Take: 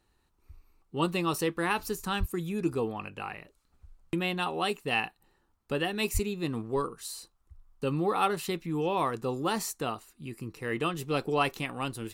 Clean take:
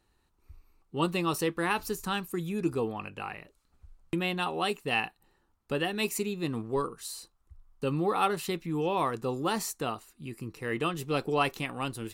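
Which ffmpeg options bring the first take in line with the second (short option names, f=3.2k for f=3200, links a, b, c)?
-filter_complex "[0:a]asplit=3[a][b][c];[a]afade=t=out:st=2.19:d=0.02[d];[b]highpass=f=140:w=0.5412,highpass=f=140:w=1.3066,afade=t=in:st=2.19:d=0.02,afade=t=out:st=2.31:d=0.02[e];[c]afade=t=in:st=2.31:d=0.02[f];[d][e][f]amix=inputs=3:normalize=0,asplit=3[g][h][i];[g]afade=t=out:st=6.13:d=0.02[j];[h]highpass=f=140:w=0.5412,highpass=f=140:w=1.3066,afade=t=in:st=6.13:d=0.02,afade=t=out:st=6.25:d=0.02[k];[i]afade=t=in:st=6.25:d=0.02[l];[j][k][l]amix=inputs=3:normalize=0"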